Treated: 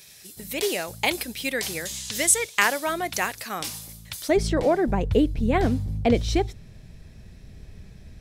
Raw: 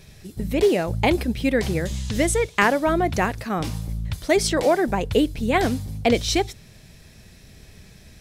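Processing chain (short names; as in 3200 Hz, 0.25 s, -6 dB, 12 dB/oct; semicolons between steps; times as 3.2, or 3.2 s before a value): tilt +4 dB/oct, from 4.28 s -2 dB/oct; gain -4 dB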